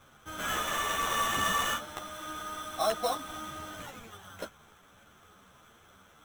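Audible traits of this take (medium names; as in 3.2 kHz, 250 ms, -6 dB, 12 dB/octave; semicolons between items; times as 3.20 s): aliases and images of a low sample rate 4.7 kHz, jitter 0%; a shimmering, thickened sound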